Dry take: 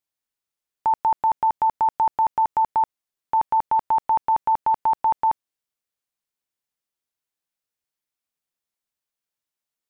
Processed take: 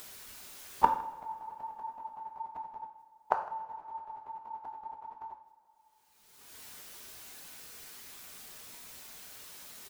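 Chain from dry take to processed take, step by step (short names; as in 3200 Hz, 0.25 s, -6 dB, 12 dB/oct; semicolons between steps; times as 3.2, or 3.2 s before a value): phase scrambler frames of 50 ms; gate with hold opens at -27 dBFS; upward compressor, threshold -37 dBFS; flipped gate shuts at -25 dBFS, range -41 dB; on a send: echo 0.158 s -21.5 dB; on the sum: two-slope reverb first 0.58 s, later 4.3 s, from -21 dB, DRR 3.5 dB; gain +17.5 dB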